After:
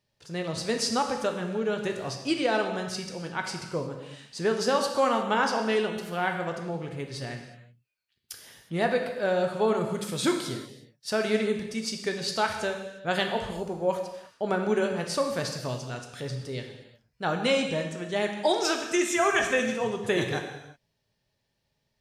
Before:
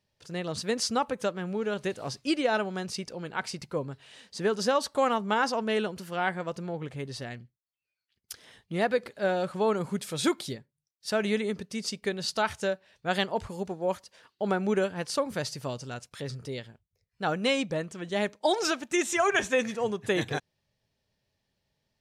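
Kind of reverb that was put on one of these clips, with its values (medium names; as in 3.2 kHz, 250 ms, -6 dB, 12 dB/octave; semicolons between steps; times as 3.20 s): gated-style reverb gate 390 ms falling, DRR 3 dB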